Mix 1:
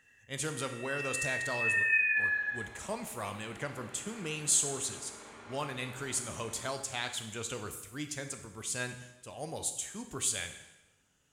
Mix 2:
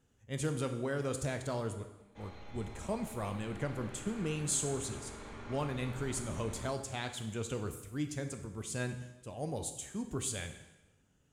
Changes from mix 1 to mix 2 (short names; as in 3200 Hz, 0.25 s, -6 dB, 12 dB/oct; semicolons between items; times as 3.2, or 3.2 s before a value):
speech: add tilt shelf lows +6.5 dB, about 660 Hz; first sound: muted; second sound: remove HPF 410 Hz 6 dB/oct